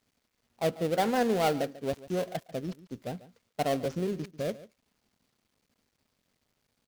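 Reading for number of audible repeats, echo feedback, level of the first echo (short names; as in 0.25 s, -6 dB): 1, no steady repeat, -17.5 dB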